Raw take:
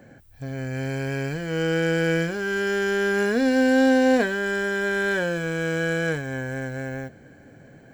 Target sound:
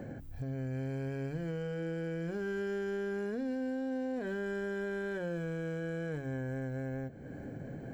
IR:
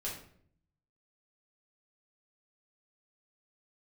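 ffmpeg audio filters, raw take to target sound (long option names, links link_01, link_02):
-af "alimiter=limit=-18dB:level=0:latency=1,tiltshelf=frequency=920:gain=6.5,acompressor=threshold=-44dB:ratio=3,bandreject=frequency=46.46:width_type=h:width=4,bandreject=frequency=92.92:width_type=h:width=4,bandreject=frequency=139.38:width_type=h:width=4,bandreject=frequency=185.84:width_type=h:width=4,bandreject=frequency=232.3:width_type=h:width=4,bandreject=frequency=278.76:width_type=h:width=4,bandreject=frequency=325.22:width_type=h:width=4,volume=4dB"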